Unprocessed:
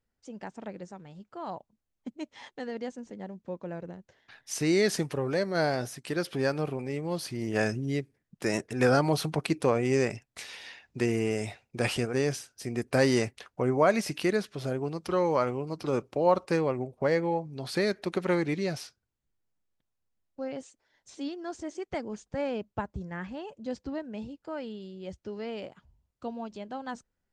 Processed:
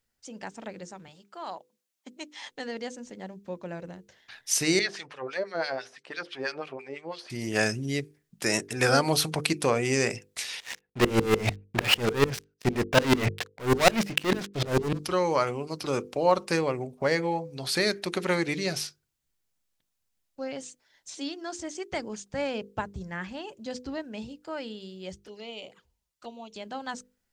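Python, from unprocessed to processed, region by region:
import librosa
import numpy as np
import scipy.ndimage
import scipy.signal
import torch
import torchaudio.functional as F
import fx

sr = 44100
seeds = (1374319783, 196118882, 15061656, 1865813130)

y = fx.chain(x, sr, fx.highpass(hz=240.0, slope=12),
    fx.low_shelf(hz=450.0, db=-5.5), at=(1.08, 2.45))
y = fx.chain(y, sr, fx.lowpass(hz=7500.0, slope=12),
    fx.filter_lfo_bandpass(shape='sine', hz=6.0, low_hz=480.0, high_hz=3300.0, q=1.3), at=(4.79, 7.3))
y = fx.chain(y, sr, fx.lowpass(hz=2200.0, slope=12),
    fx.leveller(passes=5),
    fx.tremolo_decay(direction='swelling', hz=6.7, depth_db=31), at=(10.6, 14.99))
y = fx.chain(y, sr, fx.low_shelf(hz=460.0, db=-9.5),
    fx.env_flanger(rest_ms=7.8, full_db=-40.0), at=(25.16, 26.56))
y = fx.high_shelf(y, sr, hz=2000.0, db=11.0)
y = fx.hum_notches(y, sr, base_hz=50, count=10)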